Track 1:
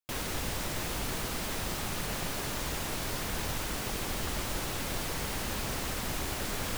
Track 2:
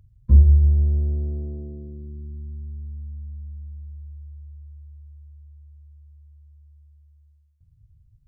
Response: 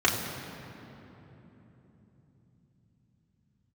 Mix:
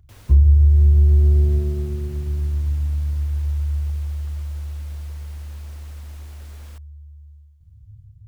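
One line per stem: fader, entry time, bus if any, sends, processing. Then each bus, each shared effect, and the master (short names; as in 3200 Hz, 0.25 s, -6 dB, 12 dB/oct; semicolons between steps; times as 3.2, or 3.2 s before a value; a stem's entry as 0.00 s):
-15.0 dB, 0.00 s, no send, dry
+0.5 dB, 0.00 s, send -14.5 dB, thirty-one-band EQ 100 Hz +6 dB, 200 Hz -12 dB, 500 Hz -9 dB; AGC gain up to 4 dB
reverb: on, RT60 3.6 s, pre-delay 3 ms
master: compressor 6:1, threshold -10 dBFS, peak gain reduction 10 dB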